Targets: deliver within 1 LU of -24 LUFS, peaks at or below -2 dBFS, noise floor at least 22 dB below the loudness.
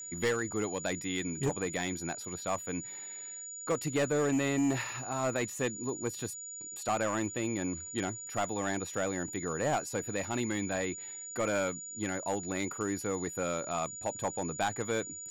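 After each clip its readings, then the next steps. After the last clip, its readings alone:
clipped samples 0.9%; clipping level -24.0 dBFS; steady tone 6.9 kHz; tone level -41 dBFS; loudness -33.5 LUFS; peak level -24.0 dBFS; loudness target -24.0 LUFS
-> clip repair -24 dBFS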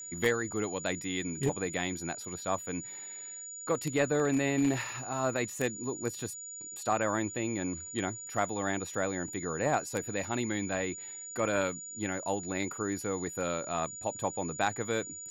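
clipped samples 0.0%; steady tone 6.9 kHz; tone level -41 dBFS
-> band-stop 6.9 kHz, Q 30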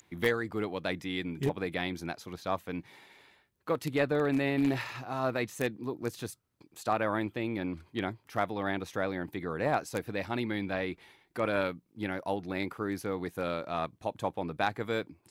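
steady tone not found; loudness -33.5 LUFS; peak level -14.5 dBFS; loudness target -24.0 LUFS
-> trim +9.5 dB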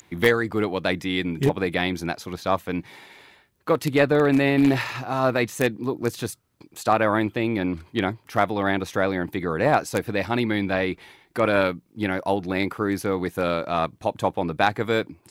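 loudness -24.0 LUFS; peak level -5.0 dBFS; noise floor -62 dBFS

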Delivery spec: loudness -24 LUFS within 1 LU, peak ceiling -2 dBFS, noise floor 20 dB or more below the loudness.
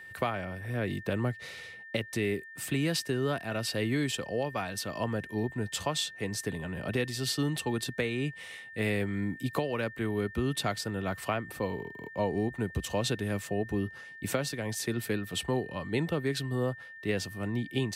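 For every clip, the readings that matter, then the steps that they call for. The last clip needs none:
steady tone 1.8 kHz; tone level -45 dBFS; loudness -32.5 LUFS; peak level -16.0 dBFS; loudness target -24.0 LUFS
-> band-stop 1.8 kHz, Q 30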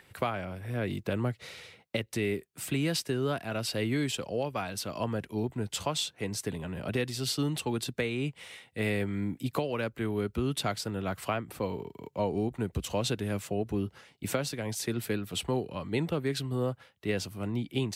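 steady tone not found; loudness -33.0 LUFS; peak level -16.0 dBFS; loudness target -24.0 LUFS
-> trim +9 dB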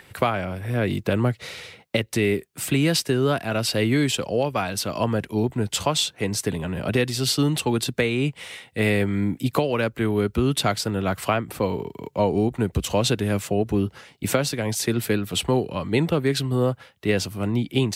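loudness -24.0 LUFS; peak level -7.0 dBFS; noise floor -57 dBFS

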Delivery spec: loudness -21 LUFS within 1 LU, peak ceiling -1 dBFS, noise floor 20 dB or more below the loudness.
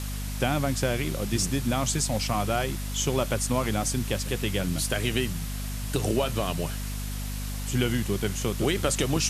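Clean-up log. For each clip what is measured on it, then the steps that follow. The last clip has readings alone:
hum 50 Hz; highest harmonic 250 Hz; hum level -30 dBFS; noise floor -32 dBFS; noise floor target -48 dBFS; loudness -27.5 LUFS; peak level -10.5 dBFS; loudness target -21.0 LUFS
-> hum notches 50/100/150/200/250 Hz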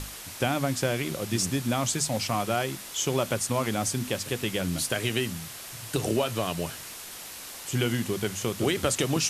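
hum not found; noise floor -41 dBFS; noise floor target -49 dBFS
-> noise reduction 8 dB, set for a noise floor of -41 dBFS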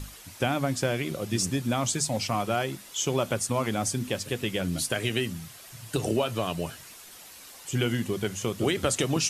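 noise floor -48 dBFS; noise floor target -49 dBFS
-> noise reduction 6 dB, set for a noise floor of -48 dBFS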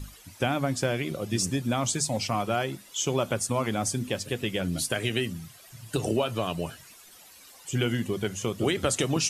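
noise floor -52 dBFS; loudness -28.5 LUFS; peak level -11.0 dBFS; loudness target -21.0 LUFS
-> trim +7.5 dB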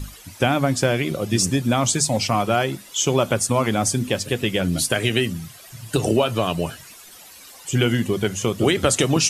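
loudness -21.0 LUFS; peak level -3.5 dBFS; noise floor -44 dBFS

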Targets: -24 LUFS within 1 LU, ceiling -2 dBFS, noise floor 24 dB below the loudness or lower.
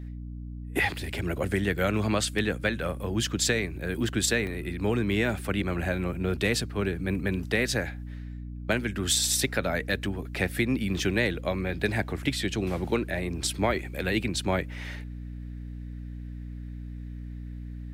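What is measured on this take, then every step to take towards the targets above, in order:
dropouts 1; longest dropout 1.1 ms; hum 60 Hz; highest harmonic 300 Hz; hum level -35 dBFS; loudness -28.0 LUFS; peak level -11.0 dBFS; loudness target -24.0 LUFS
-> interpolate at 4.47 s, 1.1 ms; hum notches 60/120/180/240/300 Hz; trim +4 dB

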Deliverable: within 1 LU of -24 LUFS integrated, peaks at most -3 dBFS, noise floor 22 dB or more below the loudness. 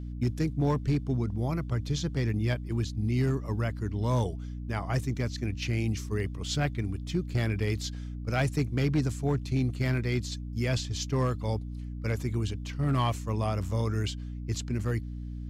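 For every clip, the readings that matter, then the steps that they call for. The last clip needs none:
clipped samples 0.6%; clipping level -19.5 dBFS; hum 60 Hz; highest harmonic 300 Hz; hum level -35 dBFS; loudness -30.5 LUFS; peak level -19.5 dBFS; loudness target -24.0 LUFS
-> clip repair -19.5 dBFS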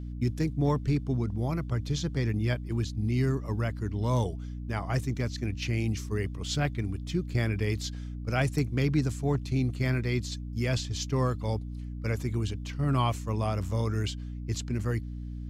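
clipped samples 0.0%; hum 60 Hz; highest harmonic 300 Hz; hum level -35 dBFS
-> hum notches 60/120/180/240/300 Hz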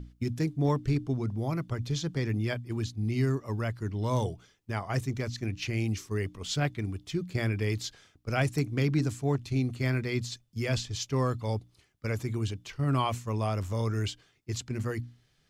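hum not found; loudness -31.5 LUFS; peak level -14.5 dBFS; loudness target -24.0 LUFS
-> trim +7.5 dB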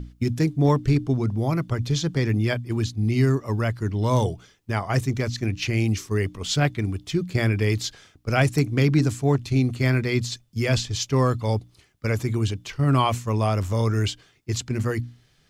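loudness -24.0 LUFS; peak level -7.0 dBFS; noise floor -61 dBFS

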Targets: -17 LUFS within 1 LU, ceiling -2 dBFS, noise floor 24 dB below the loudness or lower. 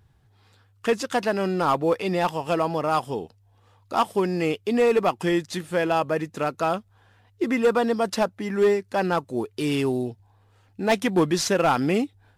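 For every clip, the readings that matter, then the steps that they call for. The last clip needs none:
clipped samples 0.6%; clipping level -13.5 dBFS; loudness -24.0 LUFS; peak level -13.5 dBFS; loudness target -17.0 LUFS
-> clip repair -13.5 dBFS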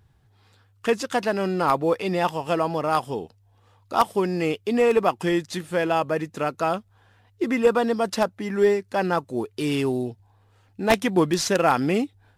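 clipped samples 0.0%; loudness -23.5 LUFS; peak level -4.5 dBFS; loudness target -17.0 LUFS
-> trim +6.5 dB; peak limiter -2 dBFS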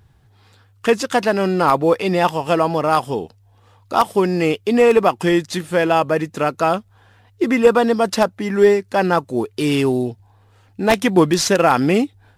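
loudness -17.5 LUFS; peak level -2.0 dBFS; noise floor -54 dBFS

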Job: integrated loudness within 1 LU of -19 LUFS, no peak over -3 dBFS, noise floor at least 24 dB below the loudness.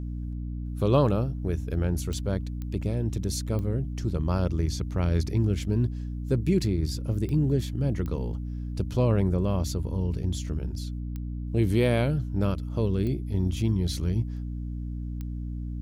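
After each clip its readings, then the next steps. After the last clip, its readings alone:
clicks found 8; hum 60 Hz; highest harmonic 300 Hz; hum level -30 dBFS; loudness -28.0 LUFS; peak level -9.0 dBFS; loudness target -19.0 LUFS
-> de-click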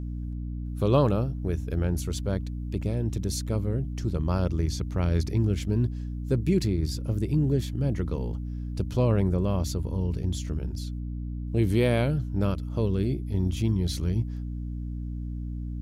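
clicks found 0; hum 60 Hz; highest harmonic 300 Hz; hum level -30 dBFS
-> de-hum 60 Hz, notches 5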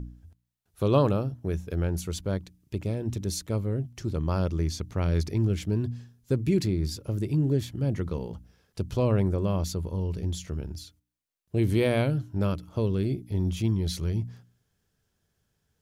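hum not found; loudness -28.5 LUFS; peak level -9.0 dBFS; loudness target -19.0 LUFS
-> trim +9.5 dB; peak limiter -3 dBFS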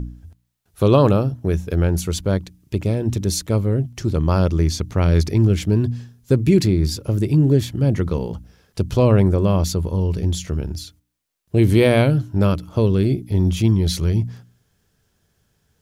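loudness -19.0 LUFS; peak level -3.0 dBFS; noise floor -67 dBFS

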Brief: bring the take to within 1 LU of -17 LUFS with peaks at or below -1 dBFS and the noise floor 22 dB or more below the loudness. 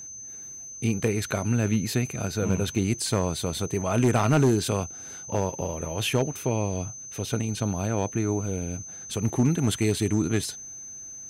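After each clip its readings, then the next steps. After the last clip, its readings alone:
clipped samples 0.4%; clipping level -14.5 dBFS; steady tone 6.2 kHz; tone level -38 dBFS; loudness -26.5 LUFS; peak level -14.5 dBFS; loudness target -17.0 LUFS
-> clip repair -14.5 dBFS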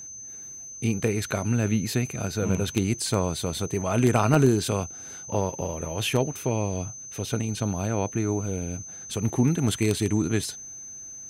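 clipped samples 0.0%; steady tone 6.2 kHz; tone level -38 dBFS
-> band-stop 6.2 kHz, Q 30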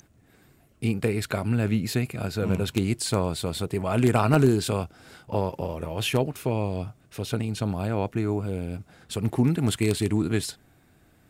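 steady tone not found; loudness -26.5 LUFS; peak level -6.0 dBFS; loudness target -17.0 LUFS
-> trim +9.5 dB; peak limiter -1 dBFS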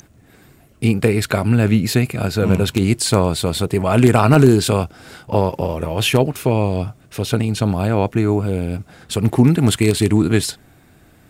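loudness -17.0 LUFS; peak level -1.0 dBFS; noise floor -50 dBFS

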